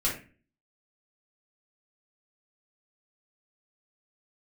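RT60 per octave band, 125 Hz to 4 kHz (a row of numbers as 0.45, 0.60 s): 0.55, 0.55, 0.40, 0.30, 0.40, 0.25 s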